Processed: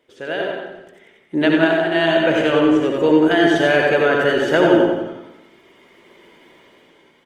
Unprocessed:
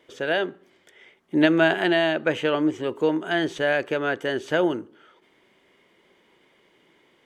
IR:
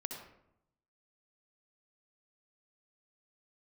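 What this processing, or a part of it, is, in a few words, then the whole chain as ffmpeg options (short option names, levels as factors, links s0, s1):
speakerphone in a meeting room: -filter_complex "[0:a]asplit=3[s0][s1][s2];[s0]afade=t=out:st=1.49:d=0.02[s3];[s1]agate=range=0.0224:threshold=0.2:ratio=3:detection=peak,afade=t=in:st=1.49:d=0.02,afade=t=out:st=1.94:d=0.02[s4];[s2]afade=t=in:st=1.94:d=0.02[s5];[s3][s4][s5]amix=inputs=3:normalize=0,aecho=1:1:91|182|273|364|455|546:0.562|0.276|0.135|0.0662|0.0324|0.0159[s6];[1:a]atrim=start_sample=2205[s7];[s6][s7]afir=irnorm=-1:irlink=0,dynaudnorm=f=230:g=11:m=5.31" -ar 48000 -c:a libopus -b:a 24k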